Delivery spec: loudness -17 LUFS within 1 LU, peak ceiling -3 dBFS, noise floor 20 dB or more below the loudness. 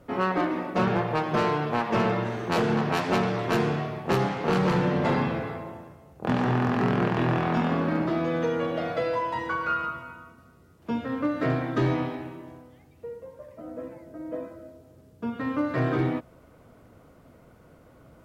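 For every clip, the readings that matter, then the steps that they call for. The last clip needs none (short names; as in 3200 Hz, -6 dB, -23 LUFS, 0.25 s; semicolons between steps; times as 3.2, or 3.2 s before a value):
clipped 0.5%; flat tops at -17.0 dBFS; loudness -26.5 LUFS; peak -17.0 dBFS; loudness target -17.0 LUFS
-> clip repair -17 dBFS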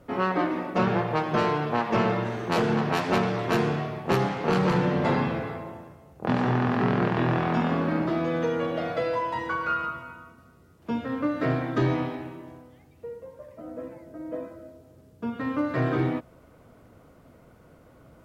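clipped 0.0%; loudness -26.5 LUFS; peak -9.5 dBFS; loudness target -17.0 LUFS
-> gain +9.5 dB; limiter -3 dBFS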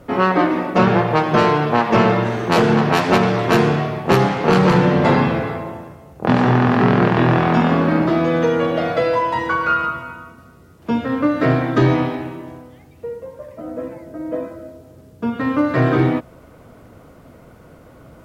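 loudness -17.0 LUFS; peak -3.0 dBFS; noise floor -45 dBFS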